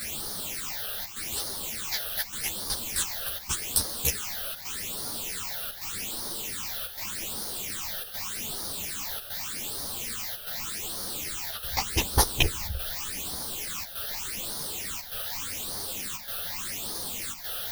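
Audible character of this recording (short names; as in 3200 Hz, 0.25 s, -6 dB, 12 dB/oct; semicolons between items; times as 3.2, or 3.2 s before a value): a quantiser's noise floor 6-bit, dither triangular; phasing stages 8, 0.84 Hz, lowest notch 280–2500 Hz; chopped level 0.86 Hz, depth 60%, duty 90%; a shimmering, thickened sound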